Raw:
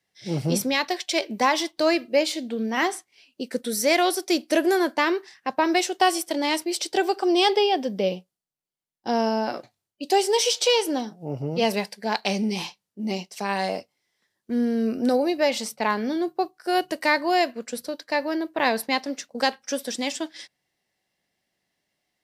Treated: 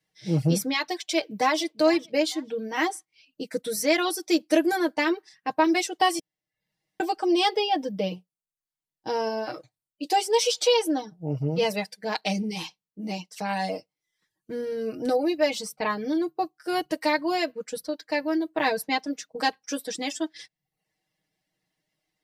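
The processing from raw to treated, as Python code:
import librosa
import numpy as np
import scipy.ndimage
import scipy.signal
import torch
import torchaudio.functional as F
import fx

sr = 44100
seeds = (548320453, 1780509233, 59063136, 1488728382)

y = fx.echo_throw(x, sr, start_s=1.03, length_s=0.57, ms=450, feedback_pct=35, wet_db=-16.0)
y = fx.edit(y, sr, fx.room_tone_fill(start_s=6.19, length_s=0.81), tone=tone)
y = fx.dereverb_blind(y, sr, rt60_s=0.53)
y = fx.low_shelf(y, sr, hz=240.0, db=6.0)
y = y + 0.89 * np.pad(y, (int(6.4 * sr / 1000.0), 0))[:len(y)]
y = y * librosa.db_to_amplitude(-5.0)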